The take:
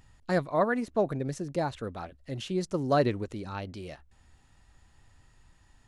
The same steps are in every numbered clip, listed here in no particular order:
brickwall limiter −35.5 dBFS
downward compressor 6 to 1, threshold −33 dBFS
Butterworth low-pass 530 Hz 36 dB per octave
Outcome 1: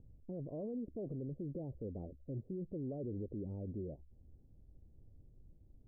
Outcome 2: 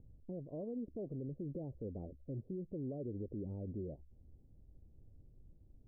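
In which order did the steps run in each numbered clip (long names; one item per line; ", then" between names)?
Butterworth low-pass, then brickwall limiter, then downward compressor
downward compressor, then Butterworth low-pass, then brickwall limiter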